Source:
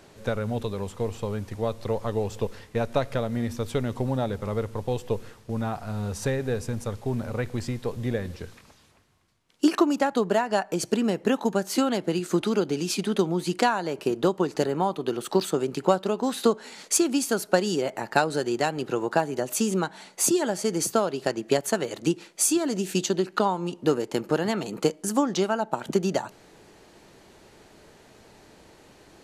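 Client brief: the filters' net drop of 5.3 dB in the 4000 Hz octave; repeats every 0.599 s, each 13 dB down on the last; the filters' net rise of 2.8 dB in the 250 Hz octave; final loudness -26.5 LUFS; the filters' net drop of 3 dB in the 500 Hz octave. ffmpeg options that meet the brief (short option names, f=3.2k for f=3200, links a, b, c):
-af "equalizer=f=250:t=o:g=5.5,equalizer=f=500:t=o:g=-6,equalizer=f=4k:t=o:g=-7,aecho=1:1:599|1198|1797:0.224|0.0493|0.0108"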